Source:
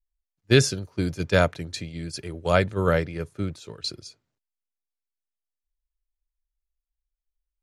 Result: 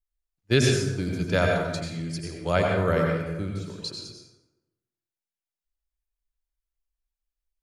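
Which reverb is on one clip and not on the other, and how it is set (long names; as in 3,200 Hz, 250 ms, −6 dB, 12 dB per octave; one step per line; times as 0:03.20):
dense smooth reverb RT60 1 s, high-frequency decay 0.6×, pre-delay 75 ms, DRR 0 dB
level −4 dB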